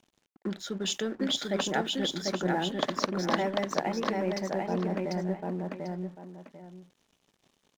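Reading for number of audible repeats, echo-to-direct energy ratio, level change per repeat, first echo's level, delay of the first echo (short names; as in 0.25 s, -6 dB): 2, -2.5 dB, -11.5 dB, -3.0 dB, 0.744 s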